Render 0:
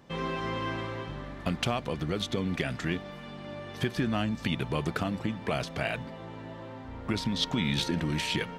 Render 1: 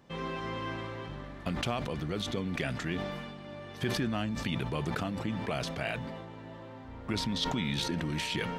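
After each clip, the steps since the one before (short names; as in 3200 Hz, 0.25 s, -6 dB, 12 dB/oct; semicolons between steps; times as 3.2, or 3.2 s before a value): sustainer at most 31 dB/s; gain -4 dB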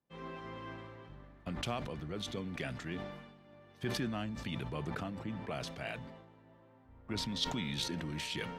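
three-band expander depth 70%; gain -6 dB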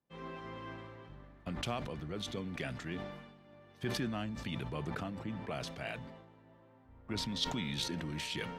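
nothing audible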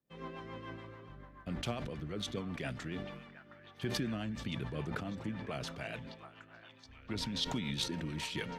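delay with a stepping band-pass 0.722 s, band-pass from 1200 Hz, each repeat 0.7 oct, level -8 dB; rotary speaker horn 7 Hz; gain +2 dB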